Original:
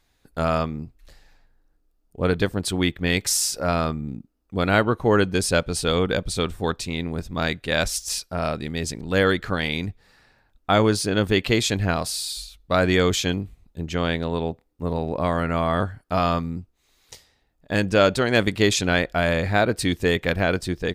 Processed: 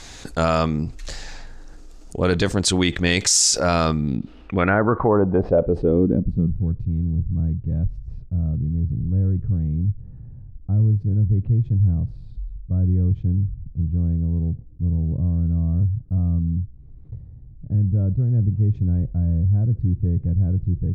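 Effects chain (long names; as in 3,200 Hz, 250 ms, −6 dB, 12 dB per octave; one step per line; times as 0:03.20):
0:04.09–0:05.58: treble cut that deepens with the level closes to 840 Hz, closed at −14.5 dBFS
0:06.55–0:07.15: high-shelf EQ 2,500 Hz +11.5 dB
low-pass filter sweep 6,900 Hz → 120 Hz, 0:03.79–0:06.70
boost into a limiter +8.5 dB
envelope flattener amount 50%
level −8 dB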